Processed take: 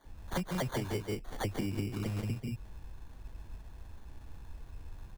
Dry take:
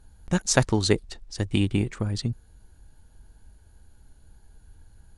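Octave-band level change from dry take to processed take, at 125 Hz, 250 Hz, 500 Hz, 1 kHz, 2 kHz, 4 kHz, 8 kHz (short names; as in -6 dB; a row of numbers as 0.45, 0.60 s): -9.0, -10.0, -10.5, -7.5, -11.5, -14.0, -18.5 dB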